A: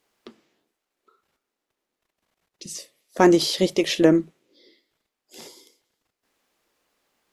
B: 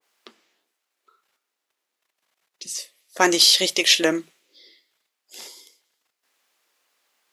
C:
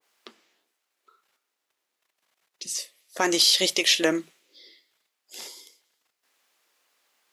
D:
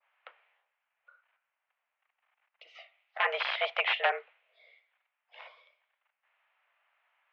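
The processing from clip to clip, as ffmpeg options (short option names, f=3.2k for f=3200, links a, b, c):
-af "highpass=f=1.2k:p=1,adynamicequalizer=threshold=0.00794:dfrequency=1700:dqfactor=0.7:tfrequency=1700:tqfactor=0.7:attack=5:release=100:ratio=0.375:range=3.5:mode=boostabove:tftype=highshelf,volume=4.5dB"
-af "alimiter=limit=-8.5dB:level=0:latency=1:release=216"
-af "aeval=exprs='(mod(3.55*val(0)+1,2)-1)/3.55':c=same,highpass=f=510:t=q:w=0.5412,highpass=f=510:t=q:w=1.307,lowpass=f=2.6k:t=q:w=0.5176,lowpass=f=2.6k:t=q:w=0.7071,lowpass=f=2.6k:t=q:w=1.932,afreqshift=120"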